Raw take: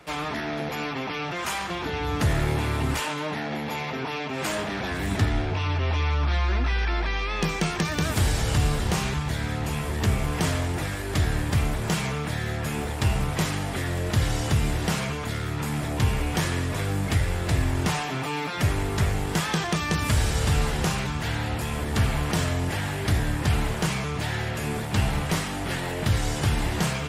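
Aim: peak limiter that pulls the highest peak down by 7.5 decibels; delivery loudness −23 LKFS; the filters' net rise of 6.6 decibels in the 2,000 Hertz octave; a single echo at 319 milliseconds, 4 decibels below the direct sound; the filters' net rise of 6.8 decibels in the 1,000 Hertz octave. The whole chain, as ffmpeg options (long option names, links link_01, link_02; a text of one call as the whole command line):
ffmpeg -i in.wav -af "equalizer=frequency=1000:width_type=o:gain=7,equalizer=frequency=2000:width_type=o:gain=6,alimiter=limit=-15dB:level=0:latency=1,aecho=1:1:319:0.631,volume=0.5dB" out.wav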